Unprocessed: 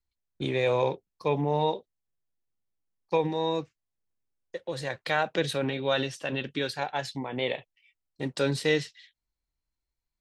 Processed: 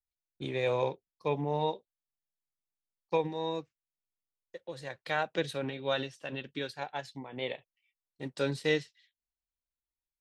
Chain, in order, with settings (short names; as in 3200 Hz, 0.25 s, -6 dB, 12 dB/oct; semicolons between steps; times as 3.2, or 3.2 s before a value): upward expander 1.5:1, over -42 dBFS; gain -3 dB